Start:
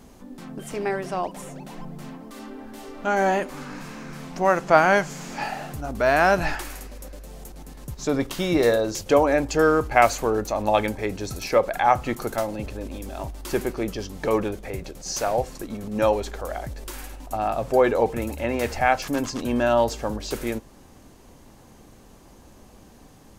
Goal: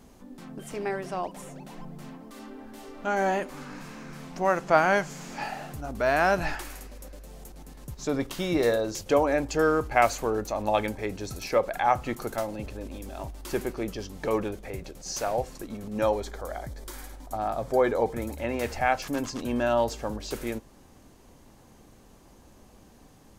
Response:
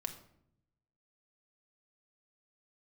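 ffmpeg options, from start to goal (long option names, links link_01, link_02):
-filter_complex "[0:a]asettb=1/sr,asplit=3[link_01][link_02][link_03];[link_01]atrim=end=16.034[link_04];[link_02]atrim=start=16.03:end=18.41,asetpts=PTS-STARTPTS,afade=type=in:duration=0.004:curve=qsin,afade=type=out:start_time=2.376:duration=0.004:curve=qsin,bandreject=frequency=2700:width=5.5[link_05];[link_03]atrim=start=18.406[link_06];[link_04][link_05]acrossfade=duration=0.004:curve1=hsin:curve2=qsin[link_07];[link_07][link_06]acrossfade=duration=0.004:curve1=qsin:curve2=hsin,volume=-4.5dB"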